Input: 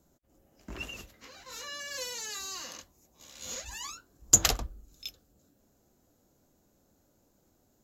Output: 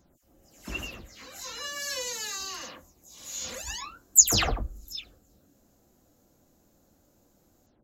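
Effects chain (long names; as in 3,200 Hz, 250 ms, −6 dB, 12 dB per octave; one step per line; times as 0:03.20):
every frequency bin delayed by itself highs early, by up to 172 ms
level +4.5 dB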